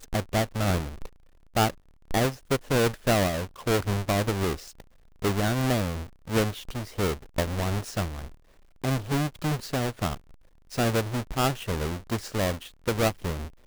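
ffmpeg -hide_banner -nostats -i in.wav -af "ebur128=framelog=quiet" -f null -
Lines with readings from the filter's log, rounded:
Integrated loudness:
  I:         -28.0 LUFS
  Threshold: -38.5 LUFS
Loudness range:
  LRA:         3.7 LU
  Threshold: -48.5 LUFS
  LRA low:   -30.4 LUFS
  LRA high:  -26.7 LUFS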